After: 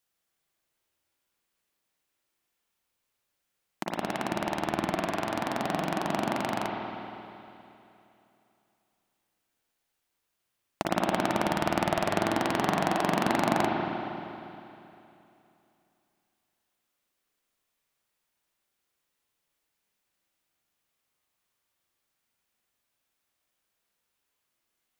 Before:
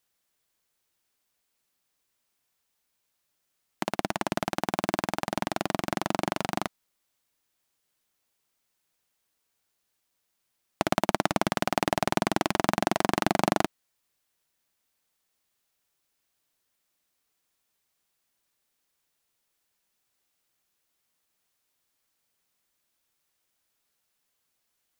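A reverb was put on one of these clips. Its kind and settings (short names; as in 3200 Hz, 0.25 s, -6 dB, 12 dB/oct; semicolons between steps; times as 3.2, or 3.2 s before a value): spring tank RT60 2.9 s, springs 39/51 ms, chirp 75 ms, DRR -1.5 dB; gain -4 dB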